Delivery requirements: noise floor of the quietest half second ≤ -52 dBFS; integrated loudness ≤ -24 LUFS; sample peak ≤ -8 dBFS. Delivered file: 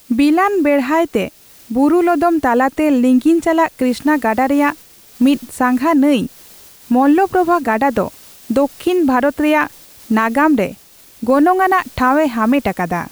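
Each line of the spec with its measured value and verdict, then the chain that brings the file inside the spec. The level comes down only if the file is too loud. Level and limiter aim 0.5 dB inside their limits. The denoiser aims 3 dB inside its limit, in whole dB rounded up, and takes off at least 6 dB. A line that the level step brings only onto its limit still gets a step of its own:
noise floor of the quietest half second -42 dBFS: fail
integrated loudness -15.0 LUFS: fail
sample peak -4.0 dBFS: fail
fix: noise reduction 6 dB, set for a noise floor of -42 dBFS; trim -9.5 dB

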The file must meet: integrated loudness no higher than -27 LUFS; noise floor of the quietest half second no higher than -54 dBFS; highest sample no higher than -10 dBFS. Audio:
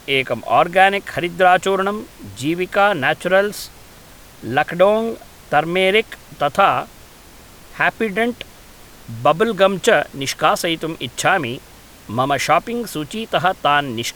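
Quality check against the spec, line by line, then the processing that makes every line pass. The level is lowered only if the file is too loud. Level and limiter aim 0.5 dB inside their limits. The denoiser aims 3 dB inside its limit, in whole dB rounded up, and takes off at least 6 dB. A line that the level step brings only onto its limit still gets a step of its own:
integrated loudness -17.5 LUFS: fail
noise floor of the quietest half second -43 dBFS: fail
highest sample -2.0 dBFS: fail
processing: noise reduction 6 dB, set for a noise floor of -43 dBFS; trim -10 dB

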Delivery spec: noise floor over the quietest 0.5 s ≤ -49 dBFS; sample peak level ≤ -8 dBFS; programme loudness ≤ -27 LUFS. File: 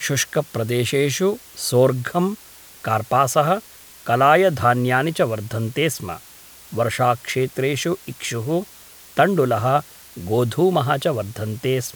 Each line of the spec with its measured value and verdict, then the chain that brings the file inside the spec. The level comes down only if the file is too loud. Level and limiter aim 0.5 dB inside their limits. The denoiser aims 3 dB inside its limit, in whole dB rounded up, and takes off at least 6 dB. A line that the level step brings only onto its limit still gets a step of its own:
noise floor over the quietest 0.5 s -44 dBFS: fail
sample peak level -1.5 dBFS: fail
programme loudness -20.5 LUFS: fail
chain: trim -7 dB

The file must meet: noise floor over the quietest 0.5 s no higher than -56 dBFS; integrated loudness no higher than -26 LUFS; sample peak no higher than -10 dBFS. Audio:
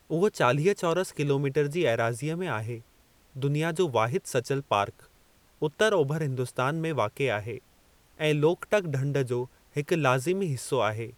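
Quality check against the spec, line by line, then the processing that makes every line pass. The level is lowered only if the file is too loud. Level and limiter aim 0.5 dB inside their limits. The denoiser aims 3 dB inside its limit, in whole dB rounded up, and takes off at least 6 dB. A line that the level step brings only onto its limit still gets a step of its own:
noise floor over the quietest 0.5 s -61 dBFS: pass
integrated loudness -27.5 LUFS: pass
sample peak -8.0 dBFS: fail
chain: peak limiter -10.5 dBFS

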